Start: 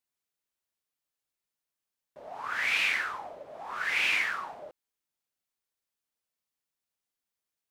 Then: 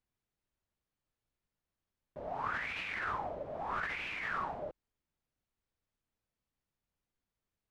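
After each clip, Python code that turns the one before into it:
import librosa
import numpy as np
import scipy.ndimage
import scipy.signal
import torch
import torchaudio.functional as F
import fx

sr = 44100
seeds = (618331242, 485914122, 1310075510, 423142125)

y = fx.riaa(x, sr, side='playback')
y = fx.over_compress(y, sr, threshold_db=-36.0, ratio=-1.0)
y = y * 10.0 ** (-1.5 / 20.0)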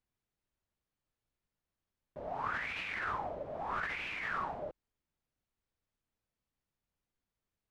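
y = x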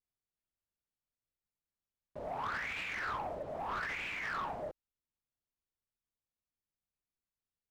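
y = fx.leveller(x, sr, passes=2)
y = fx.vibrato(y, sr, rate_hz=0.67, depth_cents=31.0)
y = y * 10.0 ** (-6.5 / 20.0)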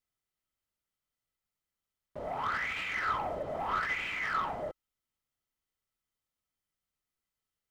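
y = fx.rider(x, sr, range_db=10, speed_s=0.5)
y = fx.small_body(y, sr, hz=(1300.0, 2000.0, 3100.0), ring_ms=45, db=10)
y = y * 10.0 ** (3.5 / 20.0)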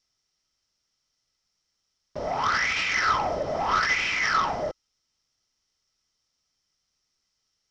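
y = fx.lowpass_res(x, sr, hz=5500.0, q=8.3)
y = y * 10.0 ** (8.0 / 20.0)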